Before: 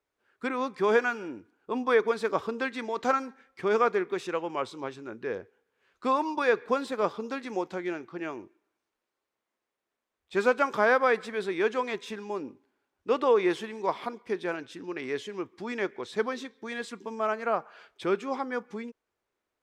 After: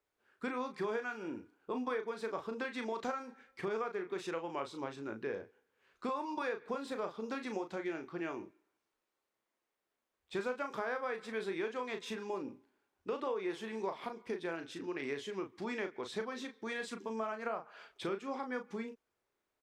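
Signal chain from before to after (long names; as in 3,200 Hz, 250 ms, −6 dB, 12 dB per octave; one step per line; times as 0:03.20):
downward compressor 6 to 1, threshold −33 dBFS, peak gain reduction 14.5 dB
double-tracking delay 36 ms −7 dB
level −2.5 dB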